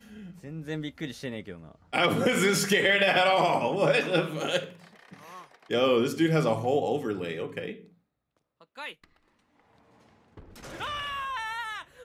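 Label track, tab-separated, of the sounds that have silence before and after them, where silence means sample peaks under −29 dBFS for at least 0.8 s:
5.710000	7.710000	sound
8.790000	8.900000	sound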